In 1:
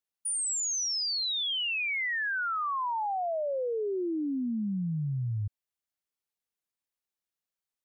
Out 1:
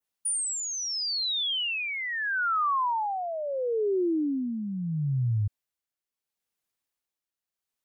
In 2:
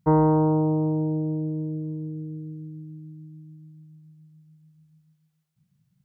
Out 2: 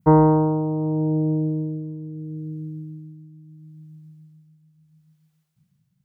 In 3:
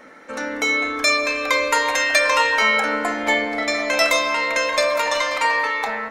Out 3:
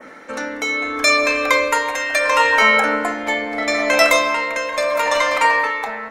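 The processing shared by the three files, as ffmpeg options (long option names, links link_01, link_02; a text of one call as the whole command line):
ffmpeg -i in.wav -af "adynamicequalizer=threshold=0.0178:dfrequency=4500:dqfactor=1:tfrequency=4500:tqfactor=1:attack=5:release=100:ratio=0.375:range=3:mode=cutabove:tftype=bell,tremolo=f=0.75:d=0.56,volume=5.5dB" out.wav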